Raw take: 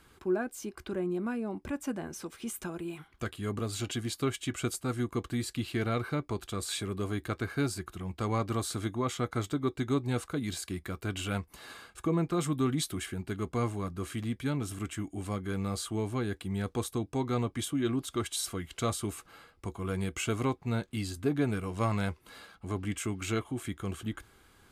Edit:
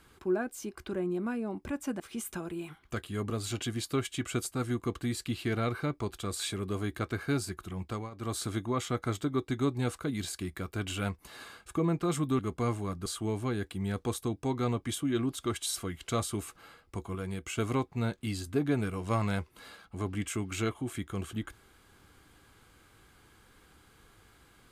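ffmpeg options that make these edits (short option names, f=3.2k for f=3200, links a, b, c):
-filter_complex "[0:a]asplit=7[a][b][c][d][e][f][g];[a]atrim=end=2.002[h];[b]atrim=start=2.288:end=8.4,asetpts=PTS-STARTPTS,afade=t=out:st=5.852:d=0.26:silence=0.11885[i];[c]atrim=start=8.4:end=12.682,asetpts=PTS-STARTPTS,afade=t=in:d=0.26:silence=0.11885[j];[d]atrim=start=13.338:end=14.012[k];[e]atrim=start=15.758:end=19.852[l];[f]atrim=start=19.848:end=20.282,asetpts=PTS-STARTPTS,volume=-4dB[m];[g]atrim=start=20.278[n];[i][j]concat=n=2:v=0:a=1[o];[h][o]acrossfade=d=0.004:c1=hsin:c2=hsin[p];[p][k]acrossfade=d=0.004:c1=hsin:c2=hsin[q];[q][l]acrossfade=d=0.004:c1=hsin:c2=hsin[r];[r][m]acrossfade=d=0.004:c1=hsin:c2=hsin[s];[s][n]acrossfade=d=0.004:c1=hsin:c2=hsin"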